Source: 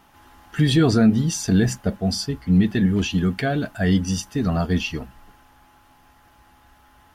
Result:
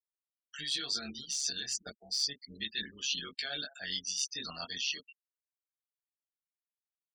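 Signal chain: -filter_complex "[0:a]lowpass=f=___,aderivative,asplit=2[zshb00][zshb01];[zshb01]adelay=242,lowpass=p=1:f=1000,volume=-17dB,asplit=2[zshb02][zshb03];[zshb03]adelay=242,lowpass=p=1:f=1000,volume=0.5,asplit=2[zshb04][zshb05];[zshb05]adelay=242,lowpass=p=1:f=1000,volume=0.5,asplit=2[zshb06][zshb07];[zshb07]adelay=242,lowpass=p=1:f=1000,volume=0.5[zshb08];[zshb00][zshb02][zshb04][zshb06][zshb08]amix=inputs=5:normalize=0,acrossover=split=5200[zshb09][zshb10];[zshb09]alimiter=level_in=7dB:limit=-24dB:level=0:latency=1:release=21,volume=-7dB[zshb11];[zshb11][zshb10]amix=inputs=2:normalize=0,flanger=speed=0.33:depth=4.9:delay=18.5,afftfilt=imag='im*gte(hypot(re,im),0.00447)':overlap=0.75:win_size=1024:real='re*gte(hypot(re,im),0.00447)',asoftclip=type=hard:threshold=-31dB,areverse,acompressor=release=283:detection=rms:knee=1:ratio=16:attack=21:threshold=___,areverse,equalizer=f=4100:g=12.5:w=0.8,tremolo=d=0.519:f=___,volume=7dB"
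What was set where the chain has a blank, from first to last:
7700, -45dB, 140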